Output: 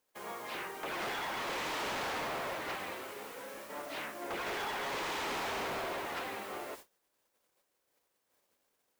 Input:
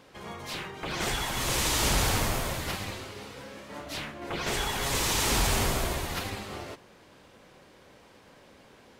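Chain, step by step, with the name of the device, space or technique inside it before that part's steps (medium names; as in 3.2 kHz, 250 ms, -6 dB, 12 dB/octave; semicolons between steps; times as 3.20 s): aircraft radio (band-pass 370–2300 Hz; hard clipper -34.5 dBFS, distortion -8 dB; white noise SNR 14 dB; gate -48 dBFS, range -28 dB)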